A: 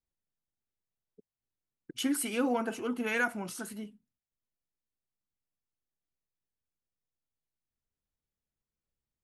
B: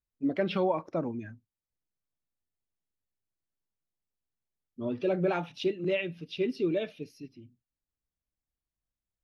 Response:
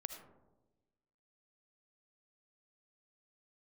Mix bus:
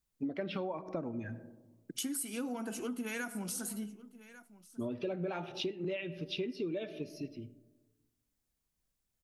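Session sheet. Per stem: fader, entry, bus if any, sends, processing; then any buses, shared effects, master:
-6.5 dB, 0.00 s, send -5 dB, echo send -21 dB, HPF 170 Hz 24 dB/oct; tone controls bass +12 dB, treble +12 dB
+2.5 dB, 0.00 s, send -6 dB, no echo send, dry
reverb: on, RT60 1.1 s, pre-delay 35 ms
echo: echo 1.146 s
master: compressor 6:1, threshold -35 dBFS, peak gain reduction 16.5 dB

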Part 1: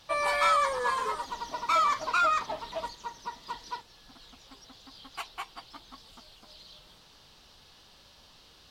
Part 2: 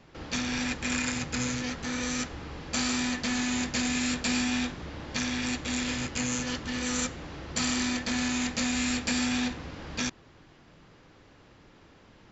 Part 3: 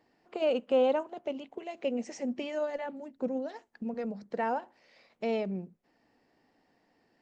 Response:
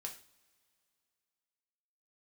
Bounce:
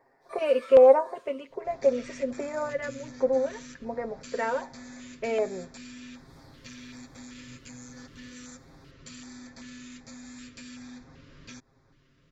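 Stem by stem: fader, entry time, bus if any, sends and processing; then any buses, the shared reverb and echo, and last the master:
-7.0 dB, 0.20 s, bus A, no send, expander -53 dBFS; tilt +1.5 dB/oct; detuned doubles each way 59 cents; auto duck -22 dB, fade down 1.70 s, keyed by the third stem
-14.5 dB, 1.50 s, bus A, no send, vocal rider 2 s
-4.0 dB, 0.00 s, no bus, send -9.5 dB, ten-band EQ 250 Hz -5 dB, 500 Hz +9 dB, 1000 Hz +8 dB, 2000 Hz +8 dB, 4000 Hz -6 dB
bus A: 0.0 dB, compressor, threshold -44 dBFS, peak gain reduction 6.5 dB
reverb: on, pre-delay 3 ms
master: low shelf 76 Hz +6 dB; comb 7.5 ms; LFO notch square 1.3 Hz 790–2900 Hz

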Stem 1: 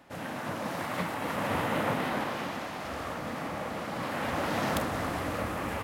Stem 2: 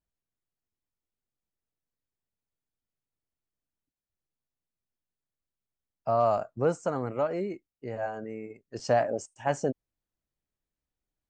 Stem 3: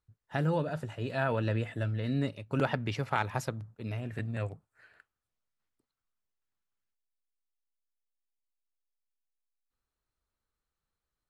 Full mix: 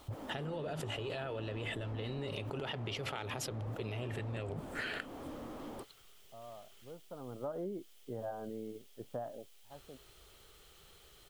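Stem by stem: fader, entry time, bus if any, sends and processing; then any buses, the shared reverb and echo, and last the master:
-1.5 dB, 0.00 s, no send, Chebyshev band-pass 230–1300 Hz, order 5; slew limiter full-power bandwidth 3.7 Hz
-7.5 dB, 0.25 s, no send, LPF 1400 Hz 24 dB/oct; low shelf 500 Hz +6.5 dB; auto duck -21 dB, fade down 0.95 s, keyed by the third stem
-10.5 dB, 0.00 s, no send, thirty-one-band EQ 250 Hz -12 dB, 400 Hz +8 dB, 1000 Hz -7 dB, 1600 Hz -5 dB, 3150 Hz +10 dB; fast leveller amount 100%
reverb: off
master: low shelf 140 Hz -5 dB; compressor, threshold -36 dBFS, peak gain reduction 7.5 dB

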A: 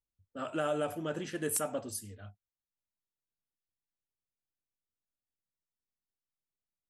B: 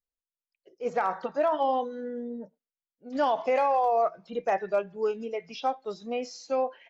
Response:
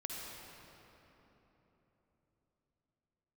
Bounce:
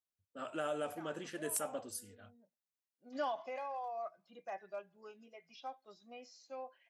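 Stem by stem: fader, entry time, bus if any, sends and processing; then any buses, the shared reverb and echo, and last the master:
-4.5 dB, 0.00 s, no send, HPF 290 Hz 6 dB/oct
3.17 s -6.5 dB -> 3.57 s -14.5 dB, 0.00 s, no send, low shelf 440 Hz -9 dB; notch comb 450 Hz; auto duck -17 dB, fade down 1.20 s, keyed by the first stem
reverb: off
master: dry

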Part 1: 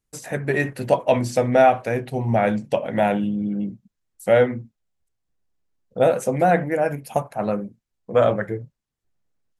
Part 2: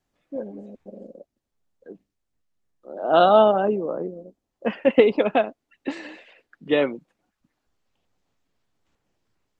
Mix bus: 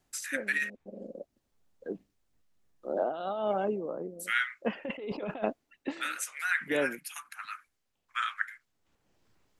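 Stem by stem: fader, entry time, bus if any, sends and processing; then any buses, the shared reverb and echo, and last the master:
-4.5 dB, 0.00 s, muted 0.7–3.45, no send, steep high-pass 1300 Hz 48 dB/oct
-0.5 dB, 0.00 s, no send, auto duck -13 dB, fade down 0.45 s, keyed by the first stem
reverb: off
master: negative-ratio compressor -31 dBFS, ratio -1

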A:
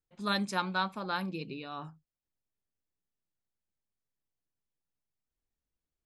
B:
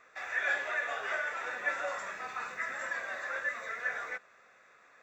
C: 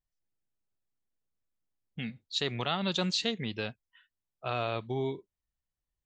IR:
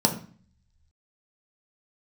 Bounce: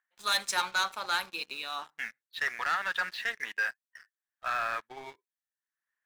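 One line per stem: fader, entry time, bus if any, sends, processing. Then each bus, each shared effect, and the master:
-4.5 dB, 0.00 s, send -23.5 dB, high shelf 2300 Hz +5.5 dB
off
-3.5 dB, 0.00 s, no send, upward compressor, threshold -50 dBFS; flange 0.99 Hz, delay 1.2 ms, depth 3.5 ms, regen -81%; synth low-pass 1700 Hz, resonance Q 6.6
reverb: on, RT60 0.45 s, pre-delay 3 ms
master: HPF 1100 Hz 12 dB/oct; sample leveller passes 3

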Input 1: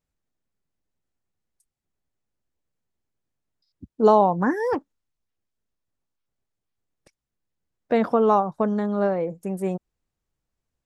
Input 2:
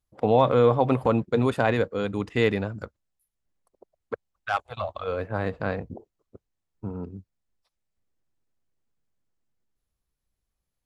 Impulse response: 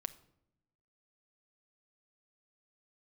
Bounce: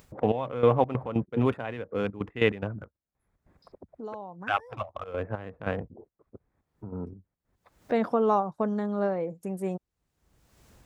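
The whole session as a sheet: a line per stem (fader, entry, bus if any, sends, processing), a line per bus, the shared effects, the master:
-5.0 dB, 0.00 s, no send, auto duck -20 dB, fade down 0.25 s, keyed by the second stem
-1.0 dB, 0.00 s, no send, Wiener smoothing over 15 samples; step gate ".xx...xx.x.x" 143 bpm -12 dB; resonant high shelf 3600 Hz -6 dB, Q 3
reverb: off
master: HPF 41 Hz; upward compressor, threshold -33 dBFS

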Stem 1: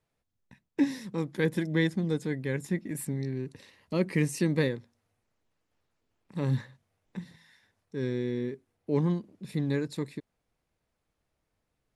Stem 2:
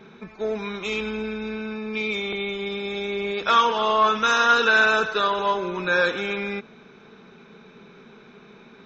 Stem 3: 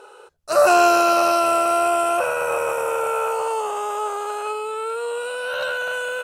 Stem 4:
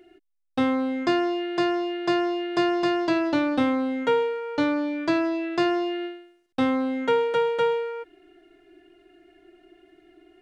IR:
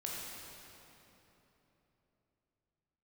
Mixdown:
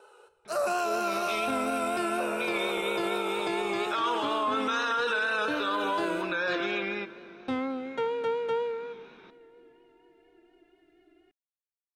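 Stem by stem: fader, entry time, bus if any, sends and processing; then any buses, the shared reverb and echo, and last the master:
off
-3.5 dB, 0.45 s, send -17.5 dB, LPF 5700 Hz; low shelf 340 Hz -8 dB
-12.5 dB, 0.00 s, send -8.5 dB, dry
-9.5 dB, 0.90 s, send -11.5 dB, dry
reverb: on, RT60 3.5 s, pre-delay 14 ms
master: vibrato 4.2 Hz 38 cents; limiter -20 dBFS, peak gain reduction 10.5 dB

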